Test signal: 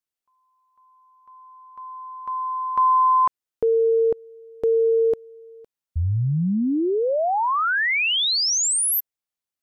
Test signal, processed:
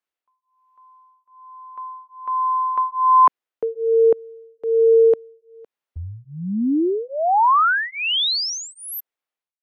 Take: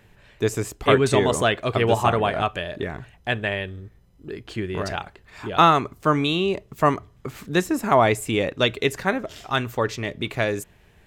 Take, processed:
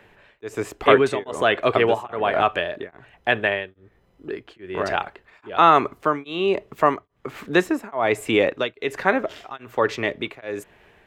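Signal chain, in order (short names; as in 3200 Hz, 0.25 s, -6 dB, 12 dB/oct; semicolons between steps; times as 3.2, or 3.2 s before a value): three-band isolator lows -13 dB, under 270 Hz, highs -12 dB, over 3300 Hz; in parallel at 0 dB: limiter -14 dBFS; on the sum: beating tremolo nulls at 1.2 Hz; gain +1 dB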